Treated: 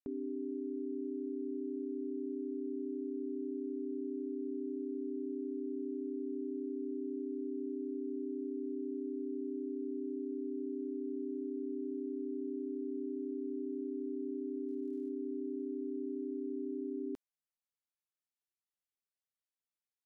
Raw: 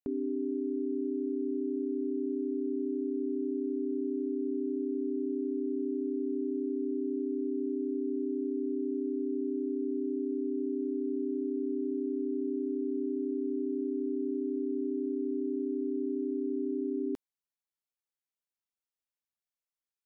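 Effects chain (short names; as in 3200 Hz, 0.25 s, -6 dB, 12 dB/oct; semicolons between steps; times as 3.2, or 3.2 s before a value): 14.67–15.08 crackle 140/s -> 400/s -57 dBFS; downsampling 32000 Hz; gain -6.5 dB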